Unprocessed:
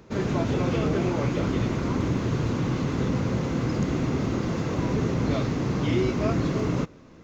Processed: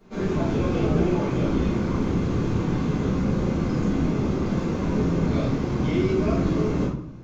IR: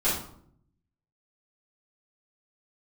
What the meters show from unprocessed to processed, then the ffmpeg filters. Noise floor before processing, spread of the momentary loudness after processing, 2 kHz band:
-49 dBFS, 3 LU, -1.0 dB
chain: -filter_complex "[0:a]flanger=delay=9.9:depth=5.2:regen=-66:speed=0.81:shape=sinusoidal[s0];[1:a]atrim=start_sample=2205[s1];[s0][s1]afir=irnorm=-1:irlink=0,volume=0.398"

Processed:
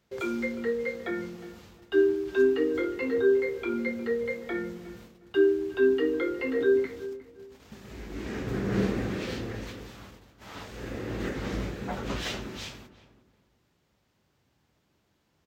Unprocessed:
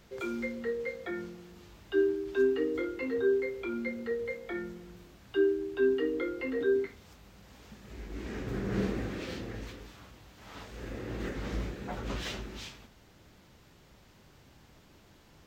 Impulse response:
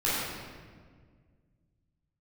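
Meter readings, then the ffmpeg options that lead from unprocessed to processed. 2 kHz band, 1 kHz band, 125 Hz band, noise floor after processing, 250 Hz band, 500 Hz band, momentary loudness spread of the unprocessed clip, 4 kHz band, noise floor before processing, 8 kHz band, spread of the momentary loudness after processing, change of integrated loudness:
+4.5 dB, +4.5 dB, +4.0 dB, -72 dBFS, +4.5 dB, +4.5 dB, 19 LU, +4.5 dB, -59 dBFS, no reading, 19 LU, +4.5 dB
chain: -filter_complex "[0:a]highpass=62,agate=range=0.141:threshold=0.00224:ratio=16:detection=peak,asplit=2[s0][s1];[s1]adelay=359,lowpass=f=1300:p=1,volume=0.2,asplit=2[s2][s3];[s3]adelay=359,lowpass=f=1300:p=1,volume=0.29,asplit=2[s4][s5];[s5]adelay=359,lowpass=f=1300:p=1,volume=0.29[s6];[s0][s2][s4][s6]amix=inputs=4:normalize=0,volume=1.68"

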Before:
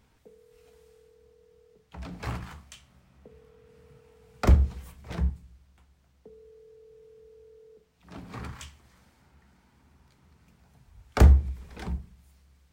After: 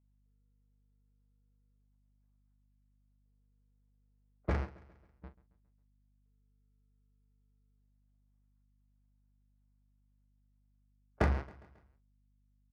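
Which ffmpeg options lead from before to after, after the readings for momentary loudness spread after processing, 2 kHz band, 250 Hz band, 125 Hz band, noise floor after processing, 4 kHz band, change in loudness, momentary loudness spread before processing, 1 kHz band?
12 LU, -6.0 dB, -10.0 dB, -15.5 dB, -71 dBFS, -14.0 dB, -9.0 dB, 24 LU, -7.5 dB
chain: -filter_complex "[0:a]aeval=exprs='val(0)+0.5*0.0531*sgn(val(0))':c=same,lowpass=f=2700:w=0.5412,lowpass=f=2700:w=1.3066,agate=range=0.001:threshold=0.112:ratio=16:detection=peak,highpass=f=540:p=1,equalizer=f=1800:t=o:w=0.3:g=13.5,bandreject=f=1800:w=5.3,adynamicsmooth=sensitivity=5.5:basefreq=990,aeval=exprs='val(0)+0.000282*(sin(2*PI*50*n/s)+sin(2*PI*2*50*n/s)/2+sin(2*PI*3*50*n/s)/3+sin(2*PI*4*50*n/s)/4+sin(2*PI*5*50*n/s)/5)':c=same,asplit=2[s0][s1];[s1]adelay=42,volume=0.237[s2];[s0][s2]amix=inputs=2:normalize=0,asplit=2[s3][s4];[s4]aecho=0:1:136|272|408|544:0.1|0.052|0.027|0.0141[s5];[s3][s5]amix=inputs=2:normalize=0"

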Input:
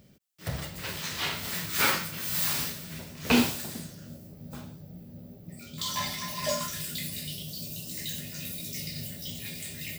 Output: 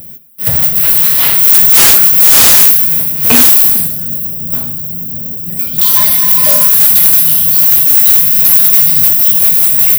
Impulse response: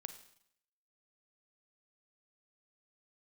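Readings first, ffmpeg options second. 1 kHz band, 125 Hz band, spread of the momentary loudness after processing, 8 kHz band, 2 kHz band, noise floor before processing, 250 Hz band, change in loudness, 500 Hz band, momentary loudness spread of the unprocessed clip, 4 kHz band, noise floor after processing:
+13.5 dB, +13.0 dB, 13 LU, +24.0 dB, +13.5 dB, -49 dBFS, +9.5 dB, +26.5 dB, +12.5 dB, 20 LU, +16.0 dB, -21 dBFS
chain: -filter_complex "[0:a]aexciter=amount=12.8:drive=4.3:freq=9500,asplit=2[s0][s1];[1:a]atrim=start_sample=2205[s2];[s1][s2]afir=irnorm=-1:irlink=0,volume=3.35[s3];[s0][s3]amix=inputs=2:normalize=0,acontrast=89,volume=0.891"

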